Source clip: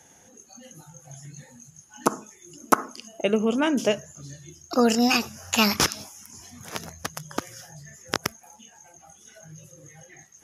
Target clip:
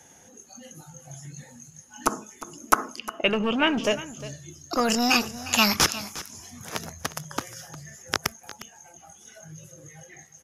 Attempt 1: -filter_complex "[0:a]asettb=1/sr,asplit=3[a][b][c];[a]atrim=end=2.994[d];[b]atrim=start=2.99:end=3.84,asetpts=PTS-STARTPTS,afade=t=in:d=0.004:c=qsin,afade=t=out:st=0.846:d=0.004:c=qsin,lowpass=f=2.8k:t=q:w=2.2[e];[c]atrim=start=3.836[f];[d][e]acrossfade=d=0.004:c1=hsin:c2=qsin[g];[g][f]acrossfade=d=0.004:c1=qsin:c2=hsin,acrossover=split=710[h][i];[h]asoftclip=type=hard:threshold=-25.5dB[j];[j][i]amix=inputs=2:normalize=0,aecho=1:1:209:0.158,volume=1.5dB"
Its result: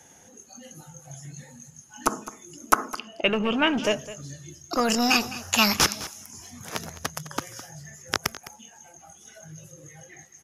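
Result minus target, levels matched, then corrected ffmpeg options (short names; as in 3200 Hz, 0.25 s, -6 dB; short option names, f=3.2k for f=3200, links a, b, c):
echo 0.147 s early
-filter_complex "[0:a]asettb=1/sr,asplit=3[a][b][c];[a]atrim=end=2.994[d];[b]atrim=start=2.99:end=3.84,asetpts=PTS-STARTPTS,afade=t=in:d=0.004:c=qsin,afade=t=out:st=0.846:d=0.004:c=qsin,lowpass=f=2.8k:t=q:w=2.2[e];[c]atrim=start=3.836[f];[d][e]acrossfade=d=0.004:c1=hsin:c2=qsin[g];[g][f]acrossfade=d=0.004:c1=qsin:c2=hsin,acrossover=split=710[h][i];[h]asoftclip=type=hard:threshold=-25.5dB[j];[j][i]amix=inputs=2:normalize=0,aecho=1:1:356:0.158,volume=1.5dB"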